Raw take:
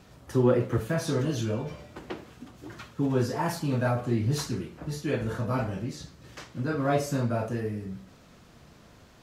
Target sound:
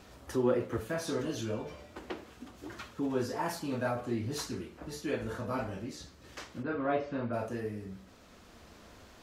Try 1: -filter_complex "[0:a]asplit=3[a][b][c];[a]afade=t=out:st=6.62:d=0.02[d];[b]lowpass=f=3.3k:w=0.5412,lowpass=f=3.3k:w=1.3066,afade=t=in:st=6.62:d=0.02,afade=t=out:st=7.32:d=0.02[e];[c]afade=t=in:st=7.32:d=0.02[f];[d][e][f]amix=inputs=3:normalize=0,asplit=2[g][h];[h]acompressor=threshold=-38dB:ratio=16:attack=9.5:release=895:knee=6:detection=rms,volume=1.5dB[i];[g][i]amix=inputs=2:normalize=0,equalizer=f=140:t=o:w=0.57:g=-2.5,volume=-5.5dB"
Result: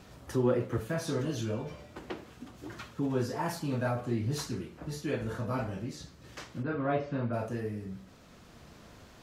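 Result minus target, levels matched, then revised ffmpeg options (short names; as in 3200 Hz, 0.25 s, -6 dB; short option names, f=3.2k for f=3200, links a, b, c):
125 Hz band +5.0 dB
-filter_complex "[0:a]asplit=3[a][b][c];[a]afade=t=out:st=6.62:d=0.02[d];[b]lowpass=f=3.3k:w=0.5412,lowpass=f=3.3k:w=1.3066,afade=t=in:st=6.62:d=0.02,afade=t=out:st=7.32:d=0.02[e];[c]afade=t=in:st=7.32:d=0.02[f];[d][e][f]amix=inputs=3:normalize=0,asplit=2[g][h];[h]acompressor=threshold=-38dB:ratio=16:attack=9.5:release=895:knee=6:detection=rms,volume=1.5dB[i];[g][i]amix=inputs=2:normalize=0,equalizer=f=140:t=o:w=0.57:g=-13.5,volume=-5.5dB"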